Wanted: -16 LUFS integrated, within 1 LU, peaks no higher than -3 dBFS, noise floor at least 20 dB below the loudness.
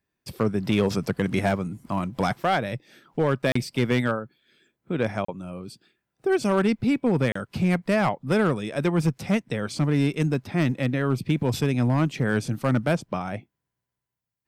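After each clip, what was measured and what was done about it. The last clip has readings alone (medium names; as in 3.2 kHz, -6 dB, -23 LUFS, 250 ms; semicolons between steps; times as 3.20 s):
clipped samples 0.7%; clipping level -14.0 dBFS; dropouts 3; longest dropout 34 ms; loudness -25.0 LUFS; peak level -14.0 dBFS; loudness target -16.0 LUFS
-> clip repair -14 dBFS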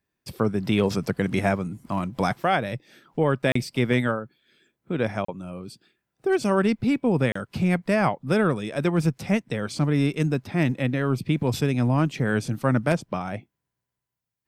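clipped samples 0.0%; dropouts 3; longest dropout 34 ms
-> interpolate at 3.52/5.25/7.32 s, 34 ms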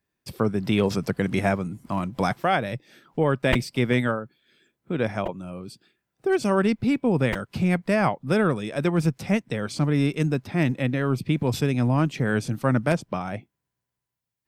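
dropouts 0; loudness -24.5 LUFS; peak level -6.5 dBFS; loudness target -16.0 LUFS
-> trim +8.5 dB; peak limiter -3 dBFS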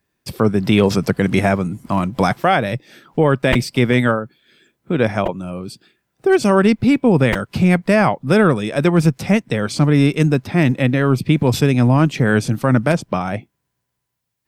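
loudness -16.5 LUFS; peak level -3.0 dBFS; noise floor -76 dBFS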